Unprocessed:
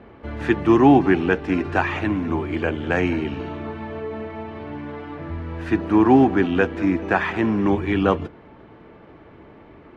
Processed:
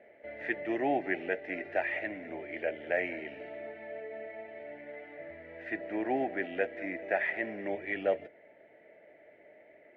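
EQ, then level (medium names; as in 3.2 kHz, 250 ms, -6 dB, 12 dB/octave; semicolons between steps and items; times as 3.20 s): two resonant band-passes 1.1 kHz, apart 1.7 oct; 0.0 dB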